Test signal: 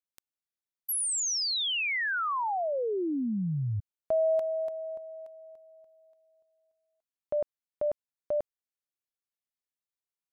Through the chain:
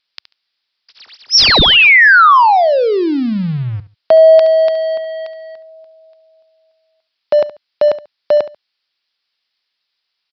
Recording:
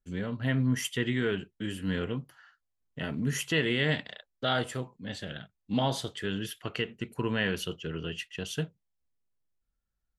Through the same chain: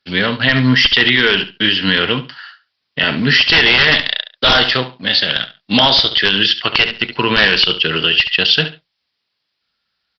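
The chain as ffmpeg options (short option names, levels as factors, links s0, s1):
-filter_complex "[0:a]asplit=2[s0][s1];[s1]aeval=exprs='sgn(val(0))*max(abs(val(0))-0.00355,0)':c=same,volume=0.708[s2];[s0][s2]amix=inputs=2:normalize=0,highpass=87,aderivative,aresample=11025,aeval=exprs='0.0237*(abs(mod(val(0)/0.0237+3,4)-2)-1)':c=same,aresample=44100,lowshelf=f=200:g=11,aecho=1:1:70|140:0.178|0.0356,alimiter=level_in=59.6:limit=0.891:release=50:level=0:latency=1,volume=0.891" -ar 48000 -c:a libopus -b:a 96k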